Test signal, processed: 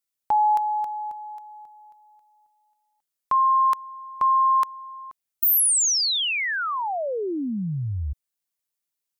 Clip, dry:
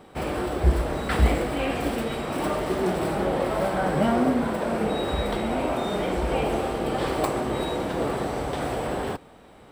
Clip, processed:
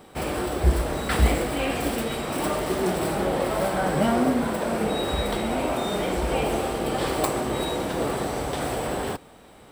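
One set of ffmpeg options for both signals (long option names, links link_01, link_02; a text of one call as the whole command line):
ffmpeg -i in.wav -af "highshelf=frequency=4700:gain=9" out.wav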